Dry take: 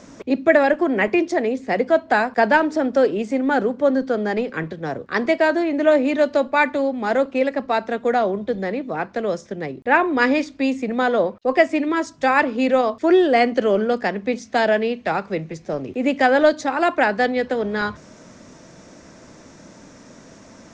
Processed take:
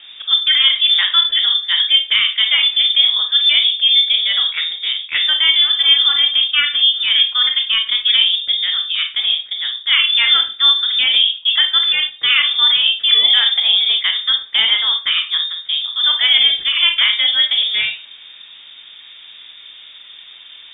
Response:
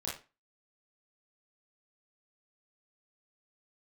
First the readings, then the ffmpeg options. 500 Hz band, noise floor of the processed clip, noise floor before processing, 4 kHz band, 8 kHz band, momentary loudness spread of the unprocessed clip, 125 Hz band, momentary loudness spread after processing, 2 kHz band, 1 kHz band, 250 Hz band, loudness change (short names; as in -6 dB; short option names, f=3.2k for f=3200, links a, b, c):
under -25 dB, -40 dBFS, -46 dBFS, +28.5 dB, n/a, 9 LU, under -15 dB, 7 LU, +3.0 dB, -11.0 dB, under -30 dB, +7.5 dB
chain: -filter_complex "[0:a]alimiter=limit=-11dB:level=0:latency=1:release=51,asplit=2[a][b];[1:a]atrim=start_sample=2205[c];[b][c]afir=irnorm=-1:irlink=0,volume=-2.5dB[d];[a][d]amix=inputs=2:normalize=0,lowpass=f=3.2k:t=q:w=0.5098,lowpass=f=3.2k:t=q:w=0.6013,lowpass=f=3.2k:t=q:w=0.9,lowpass=f=3.2k:t=q:w=2.563,afreqshift=-3800,volume=1dB"